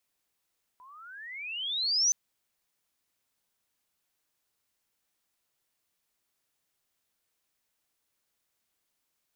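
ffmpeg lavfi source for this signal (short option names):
-f lavfi -i "aevalsrc='pow(10,(-20.5+29.5*(t/1.32-1))/20)*sin(2*PI*978*1.32/(32*log(2)/12)*(exp(32*log(2)/12*t/1.32)-1))':d=1.32:s=44100"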